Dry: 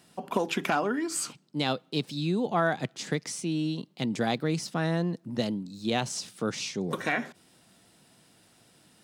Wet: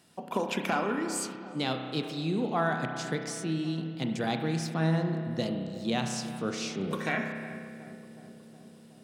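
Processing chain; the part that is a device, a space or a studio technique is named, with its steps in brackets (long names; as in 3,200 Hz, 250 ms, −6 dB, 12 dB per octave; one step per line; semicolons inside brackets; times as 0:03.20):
dub delay into a spring reverb (feedback echo with a low-pass in the loop 367 ms, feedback 76%, low-pass 1,200 Hz, level −14.5 dB; spring reverb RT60 1.9 s, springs 31 ms, chirp 75 ms, DRR 4.5 dB)
level −3 dB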